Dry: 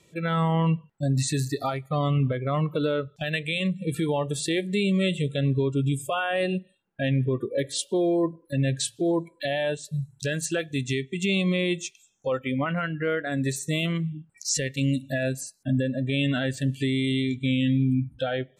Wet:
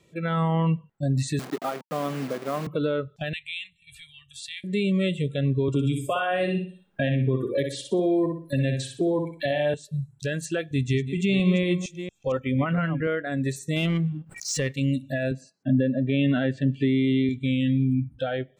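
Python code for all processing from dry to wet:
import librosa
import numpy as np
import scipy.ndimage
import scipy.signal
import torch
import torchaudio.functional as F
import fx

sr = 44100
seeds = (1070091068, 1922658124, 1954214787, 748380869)

y = fx.chain(x, sr, fx.delta_hold(step_db=-29.0),
    fx.highpass(hz=200.0, slope=24), at=(1.39, 2.67))
y = fx.chain(y, sr, fx.cheby2_bandstop(low_hz=230.0, high_hz=730.0, order=4, stop_db=70),
    fx.high_shelf(hz=11000.0, db=-12.0), at=(3.33, 4.64))
y = fx.chain(y, sr, fx.echo_feedback(ms=61, feedback_pct=29, wet_db=-6.0),
    fx.band_squash(depth_pct=70), at=(5.68, 9.74))
y = fx.chain(y, sr, fx.reverse_delay(ms=230, wet_db=-9.5),
    fx.low_shelf(hz=130.0, db=10.5), at=(10.71, 13.07))
y = fx.chain(y, sr, fx.leveller(passes=1),
    fx.pre_swell(db_per_s=120.0), at=(13.76, 14.73))
y = fx.chain(y, sr, fx.bandpass_edges(low_hz=160.0, high_hz=3800.0),
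    fx.low_shelf(hz=440.0, db=6.5), at=(15.31, 17.29))
y = fx.peak_eq(y, sr, hz=11000.0, db=-7.0, octaves=2.6)
y = fx.notch(y, sr, hz=910.0, q=19.0)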